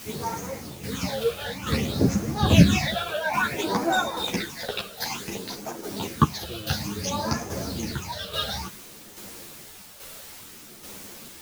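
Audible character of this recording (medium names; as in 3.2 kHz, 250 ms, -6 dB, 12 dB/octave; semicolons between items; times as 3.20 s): phasing stages 8, 0.57 Hz, lowest notch 260–3700 Hz; a quantiser's noise floor 8-bit, dither triangular; tremolo saw down 1.2 Hz, depth 55%; a shimmering, thickened sound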